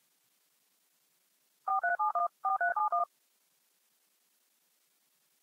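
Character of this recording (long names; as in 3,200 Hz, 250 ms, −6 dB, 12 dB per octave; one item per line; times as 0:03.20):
a quantiser's noise floor 12 bits, dither triangular
chopped level 10 Hz, depth 65%, duty 90%
Ogg Vorbis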